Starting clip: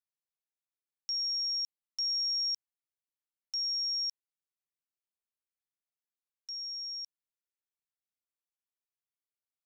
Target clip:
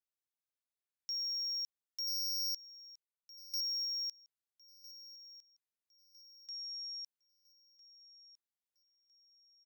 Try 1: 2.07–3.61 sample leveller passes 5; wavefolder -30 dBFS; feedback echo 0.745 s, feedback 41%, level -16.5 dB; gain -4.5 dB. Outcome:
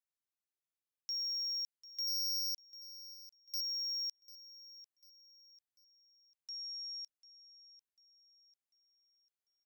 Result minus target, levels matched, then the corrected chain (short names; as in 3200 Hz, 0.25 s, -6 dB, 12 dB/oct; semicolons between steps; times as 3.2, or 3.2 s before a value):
echo 0.56 s early
2.07–3.61 sample leveller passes 5; wavefolder -30 dBFS; feedback echo 1.305 s, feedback 41%, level -16.5 dB; gain -4.5 dB